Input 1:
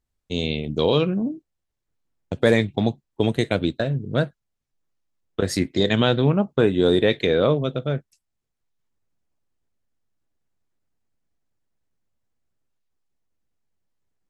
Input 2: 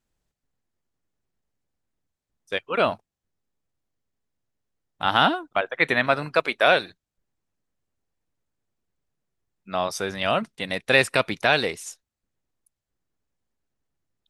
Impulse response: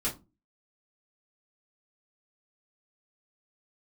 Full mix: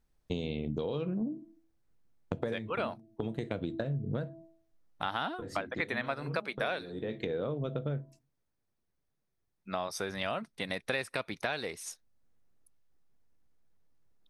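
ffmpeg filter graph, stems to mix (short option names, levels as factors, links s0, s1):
-filter_complex "[0:a]highshelf=f=2000:g=-9.5,bandreject=f=328.5:t=h:w=4,bandreject=f=657:t=h:w=4,bandreject=f=985.5:t=h:w=4,acompressor=threshold=0.0631:ratio=6,volume=1.26,asplit=3[s0][s1][s2];[s0]atrim=end=8.19,asetpts=PTS-STARTPTS,afade=t=out:st=8.186:d=0.004:c=hsin[s3];[s1]atrim=start=8.19:end=10.37,asetpts=PTS-STARTPTS,volume=0[s4];[s2]atrim=start=10.37,asetpts=PTS-STARTPTS,afade=t=in:d=0.004:c=hsin[s5];[s3][s4][s5]concat=n=3:v=0:a=1,asplit=2[s6][s7];[s7]volume=0.106[s8];[1:a]equalizer=f=2900:t=o:w=0.3:g=-4,bandreject=f=7300:w=5.8,volume=0.794,asplit=2[s9][s10];[s10]apad=whole_len=630592[s11];[s6][s11]sidechaincompress=threshold=0.0224:ratio=4:attack=7.6:release=554[s12];[2:a]atrim=start_sample=2205[s13];[s8][s13]afir=irnorm=-1:irlink=0[s14];[s12][s9][s14]amix=inputs=3:normalize=0,acompressor=threshold=0.0251:ratio=4"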